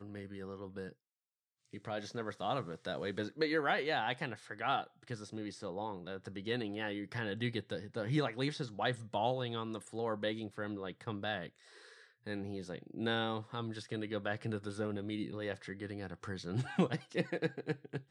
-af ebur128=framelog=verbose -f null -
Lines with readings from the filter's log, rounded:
Integrated loudness:
  I:         -38.6 LUFS
  Threshold: -48.8 LUFS
Loudness range:
  LRA:         3.9 LU
  Threshold: -58.7 LUFS
  LRA low:   -40.9 LUFS
  LRA high:  -36.9 LUFS